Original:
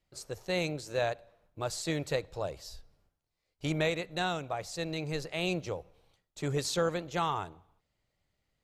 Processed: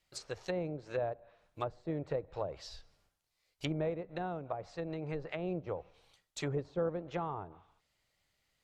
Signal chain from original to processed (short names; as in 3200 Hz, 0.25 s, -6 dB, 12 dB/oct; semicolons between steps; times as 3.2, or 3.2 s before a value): tilt shelf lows -5.5 dB, about 810 Hz; treble ducked by the level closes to 560 Hz, closed at -31 dBFS; gain +1 dB